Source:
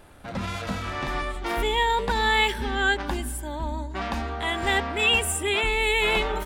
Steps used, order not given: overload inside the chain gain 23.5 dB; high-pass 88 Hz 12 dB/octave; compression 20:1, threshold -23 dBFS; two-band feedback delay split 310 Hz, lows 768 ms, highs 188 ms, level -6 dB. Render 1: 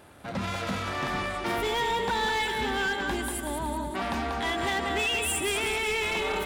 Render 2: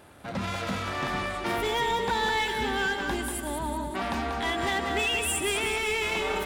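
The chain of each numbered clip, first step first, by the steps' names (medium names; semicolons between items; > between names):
high-pass > compression > two-band feedback delay > overload inside the chain; high-pass > compression > overload inside the chain > two-band feedback delay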